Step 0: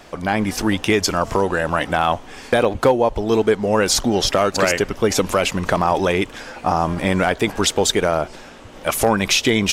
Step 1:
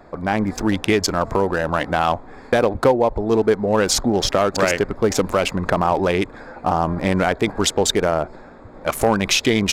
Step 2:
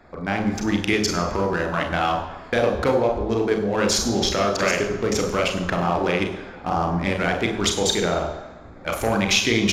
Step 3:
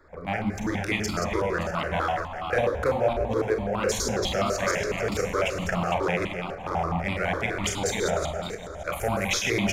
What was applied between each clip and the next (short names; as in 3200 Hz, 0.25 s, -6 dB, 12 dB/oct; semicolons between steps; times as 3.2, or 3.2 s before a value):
Wiener smoothing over 15 samples
reverb RT60 1.0 s, pre-delay 32 ms, DRR 3.5 dB; gain -8 dB
regenerating reverse delay 0.285 s, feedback 46%, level -7 dB; step phaser 12 Hz 740–1700 Hz; gain -2 dB